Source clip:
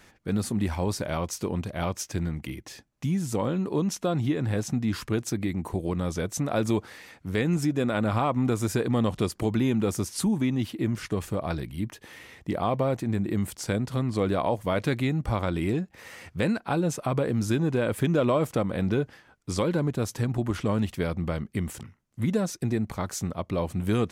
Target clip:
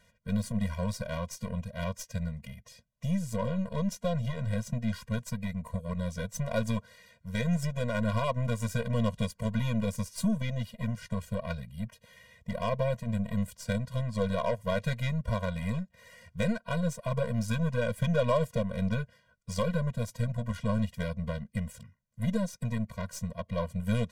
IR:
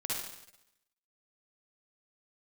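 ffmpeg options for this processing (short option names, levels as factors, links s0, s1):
-af "aeval=exprs='0.211*(cos(1*acos(clip(val(0)/0.211,-1,1)))-cos(1*PI/2))+0.0188*(cos(3*acos(clip(val(0)/0.211,-1,1)))-cos(3*PI/2))+0.0119*(cos(4*acos(clip(val(0)/0.211,-1,1)))-cos(4*PI/2))+0.0075*(cos(7*acos(clip(val(0)/0.211,-1,1)))-cos(7*PI/2))+0.00531*(cos(8*acos(clip(val(0)/0.211,-1,1)))-cos(8*PI/2))':c=same,afftfilt=real='re*eq(mod(floor(b*sr/1024/230),2),0)':imag='im*eq(mod(floor(b*sr/1024/230),2),0)':win_size=1024:overlap=0.75"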